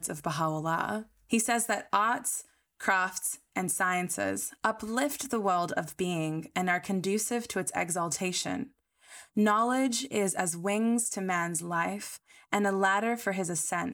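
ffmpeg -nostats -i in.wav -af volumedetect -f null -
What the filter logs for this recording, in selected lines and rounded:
mean_volume: -30.4 dB
max_volume: -10.5 dB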